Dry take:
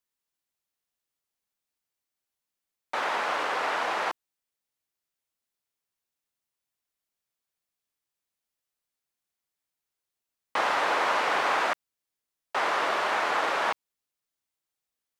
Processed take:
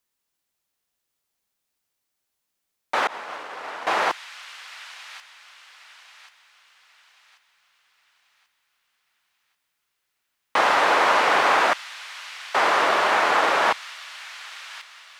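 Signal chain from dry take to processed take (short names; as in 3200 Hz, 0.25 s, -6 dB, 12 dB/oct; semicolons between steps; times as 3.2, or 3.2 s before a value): thin delay 1.087 s, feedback 40%, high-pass 2900 Hz, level -8.5 dB; 3.07–3.87 expander -18 dBFS; gain +7 dB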